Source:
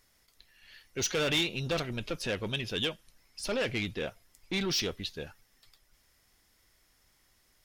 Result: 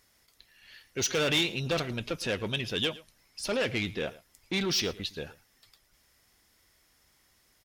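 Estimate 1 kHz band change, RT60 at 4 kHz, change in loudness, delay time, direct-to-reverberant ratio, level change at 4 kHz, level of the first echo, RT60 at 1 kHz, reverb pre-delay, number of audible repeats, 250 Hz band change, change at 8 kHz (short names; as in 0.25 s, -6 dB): +2.0 dB, none, +2.0 dB, 0.111 s, none, +2.0 dB, -19.5 dB, none, none, 1, +2.0 dB, +2.0 dB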